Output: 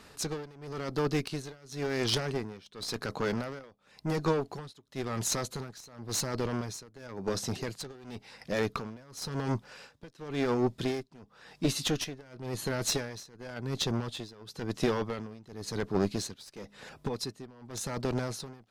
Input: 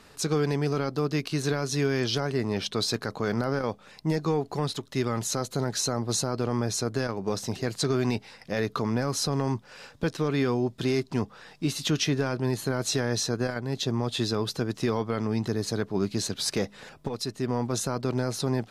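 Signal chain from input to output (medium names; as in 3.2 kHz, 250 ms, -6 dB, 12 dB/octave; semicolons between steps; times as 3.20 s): Chebyshev shaper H 2 -6 dB, 8 -28 dB, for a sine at -15 dBFS; tremolo 0.94 Hz, depth 93%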